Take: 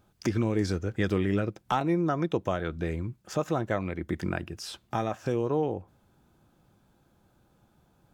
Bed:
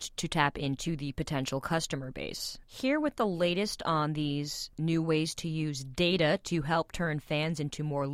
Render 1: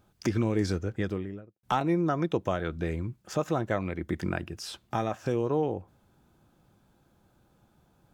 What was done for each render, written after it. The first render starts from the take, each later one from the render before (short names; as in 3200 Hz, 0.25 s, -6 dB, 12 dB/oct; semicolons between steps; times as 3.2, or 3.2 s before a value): 0.7–1.63 studio fade out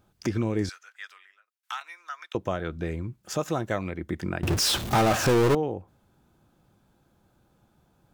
0.69–2.35 HPF 1300 Hz 24 dB/oct; 3.23–3.9 high shelf 3500 Hz +8.5 dB; 4.43–5.55 power-law curve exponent 0.35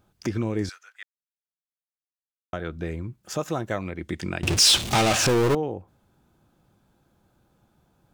1.03–2.53 mute; 3.98–5.27 band shelf 4600 Hz +8 dB 2.4 oct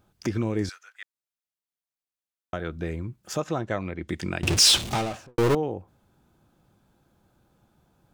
3.4–4.08 air absorption 75 m; 4.66–5.38 studio fade out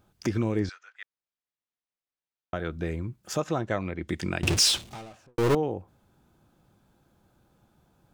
0.59–2.56 air absorption 120 m; 4.46–5.56 dip -15 dB, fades 0.40 s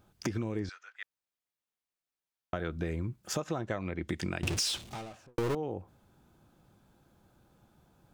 compressor 10:1, threshold -29 dBFS, peak gain reduction 11 dB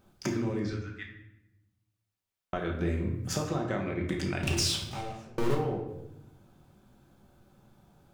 shoebox room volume 320 m³, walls mixed, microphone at 1.1 m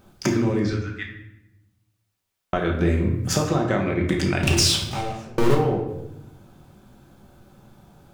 gain +9.5 dB